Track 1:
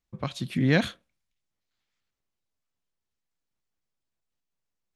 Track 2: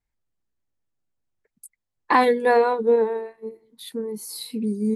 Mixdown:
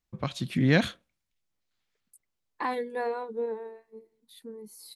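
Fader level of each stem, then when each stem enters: 0.0 dB, -13.5 dB; 0.00 s, 0.50 s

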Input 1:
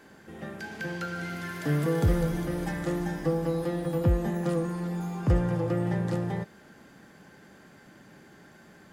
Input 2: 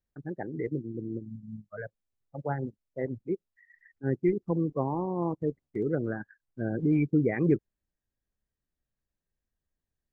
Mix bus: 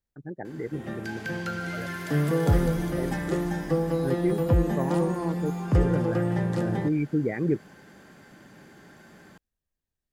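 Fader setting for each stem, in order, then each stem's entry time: +2.0 dB, -1.0 dB; 0.45 s, 0.00 s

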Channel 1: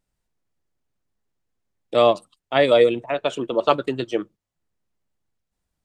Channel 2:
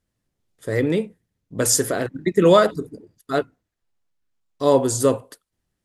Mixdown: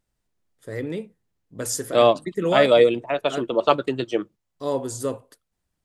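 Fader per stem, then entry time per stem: 0.0 dB, -9.0 dB; 0.00 s, 0.00 s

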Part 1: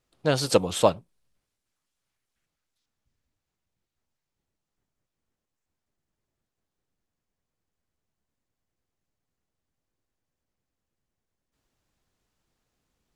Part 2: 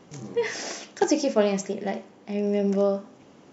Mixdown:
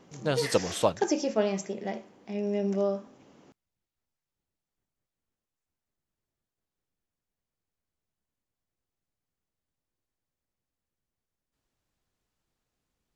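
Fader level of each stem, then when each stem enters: -5.0 dB, -5.0 dB; 0.00 s, 0.00 s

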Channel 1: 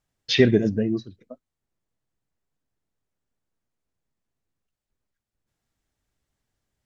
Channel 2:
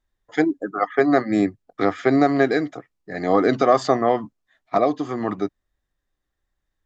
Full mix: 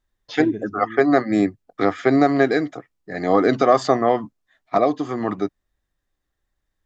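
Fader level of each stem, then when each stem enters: -13.0 dB, +1.0 dB; 0.00 s, 0.00 s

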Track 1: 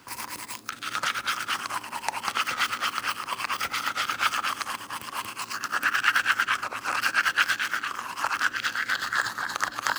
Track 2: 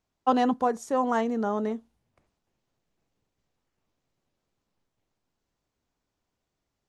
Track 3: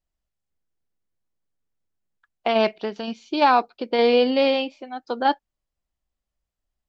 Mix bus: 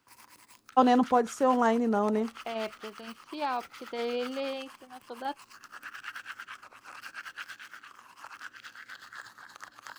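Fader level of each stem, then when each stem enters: -19.0 dB, +1.0 dB, -15.0 dB; 0.00 s, 0.50 s, 0.00 s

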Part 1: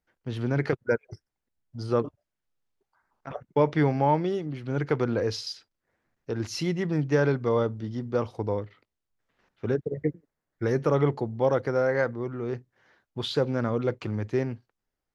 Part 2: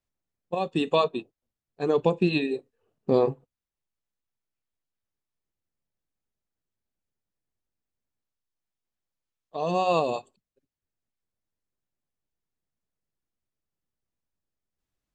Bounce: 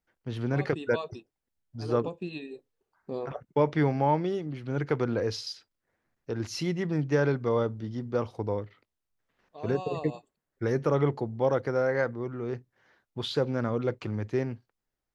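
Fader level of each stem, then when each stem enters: -2.0 dB, -13.5 dB; 0.00 s, 0.00 s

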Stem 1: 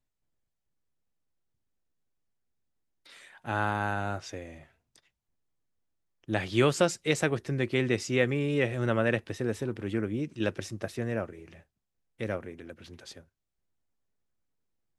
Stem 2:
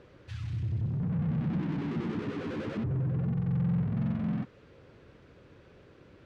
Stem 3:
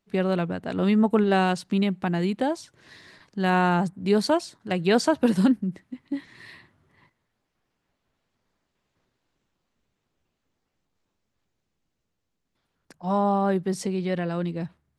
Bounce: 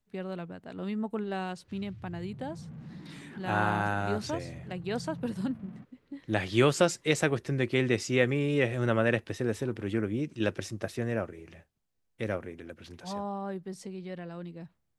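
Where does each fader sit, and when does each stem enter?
+0.5 dB, -14.5 dB, -13.0 dB; 0.00 s, 1.40 s, 0.00 s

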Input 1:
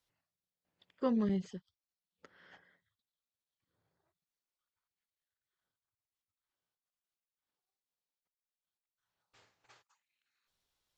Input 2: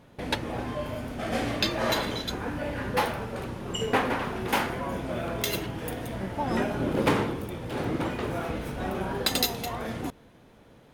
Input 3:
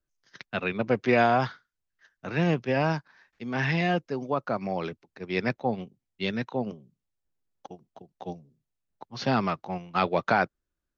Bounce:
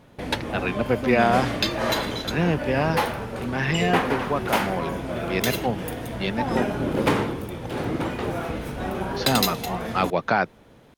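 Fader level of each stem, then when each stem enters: +2.0 dB, +2.5 dB, +2.0 dB; 0.00 s, 0.00 s, 0.00 s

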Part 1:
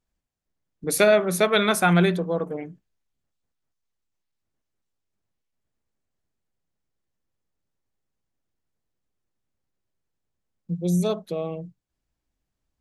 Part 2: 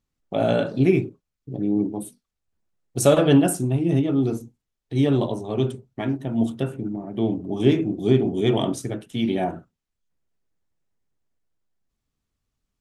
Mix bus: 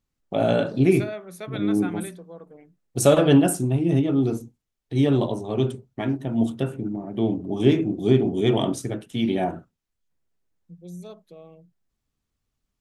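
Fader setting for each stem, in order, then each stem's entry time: -16.5 dB, 0.0 dB; 0.00 s, 0.00 s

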